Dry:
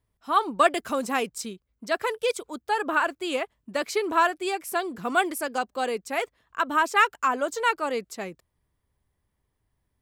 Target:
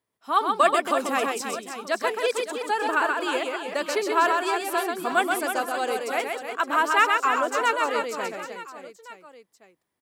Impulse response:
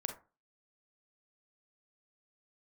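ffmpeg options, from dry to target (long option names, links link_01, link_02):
-filter_complex "[0:a]highpass=260,asplit=2[link_01][link_02];[link_02]aecho=0:1:130|312|566.8|923.5|1423:0.631|0.398|0.251|0.158|0.1[link_03];[link_01][link_03]amix=inputs=2:normalize=0"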